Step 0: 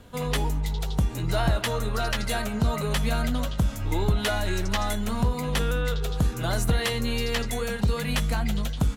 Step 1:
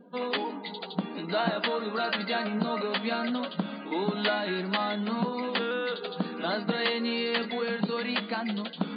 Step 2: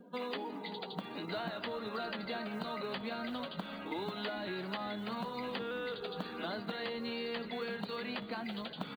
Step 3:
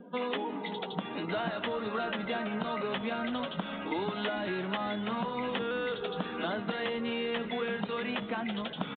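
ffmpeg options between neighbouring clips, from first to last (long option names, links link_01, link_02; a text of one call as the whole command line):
ffmpeg -i in.wav -af "afftfilt=real='re*between(b*sr/4096,170,4800)':imag='im*between(b*sr/4096,170,4800)':win_size=4096:overlap=0.75,afftdn=noise_reduction=24:noise_floor=-51,areverse,acompressor=mode=upward:threshold=-32dB:ratio=2.5,areverse" out.wav
ffmpeg -i in.wav -filter_complex "[0:a]acrusher=bits=9:mode=log:mix=0:aa=0.000001,acrossover=split=440|1100[link_01][link_02][link_03];[link_01]acompressor=threshold=-40dB:ratio=4[link_04];[link_02]acompressor=threshold=-42dB:ratio=4[link_05];[link_03]acompressor=threshold=-41dB:ratio=4[link_06];[link_04][link_05][link_06]amix=inputs=3:normalize=0,asplit=4[link_07][link_08][link_09][link_10];[link_08]adelay=388,afreqshift=-67,volume=-17dB[link_11];[link_09]adelay=776,afreqshift=-134,volume=-26.4dB[link_12];[link_10]adelay=1164,afreqshift=-201,volume=-35.7dB[link_13];[link_07][link_11][link_12][link_13]amix=inputs=4:normalize=0,volume=-2.5dB" out.wav
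ffmpeg -i in.wav -af "aresample=8000,aresample=44100,volume=6dB" out.wav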